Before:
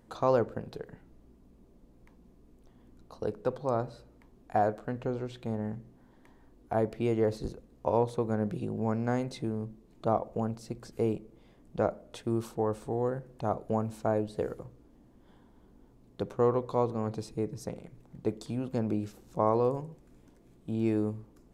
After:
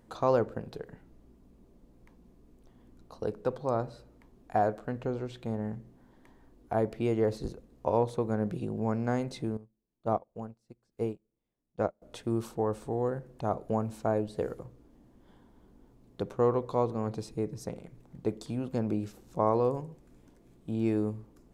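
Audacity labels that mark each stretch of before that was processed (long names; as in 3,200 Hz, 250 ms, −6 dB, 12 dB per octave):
9.570000	12.020000	expander for the loud parts 2.5 to 1, over −43 dBFS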